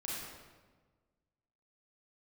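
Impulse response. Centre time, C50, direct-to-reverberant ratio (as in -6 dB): 101 ms, -2.5 dB, -6.5 dB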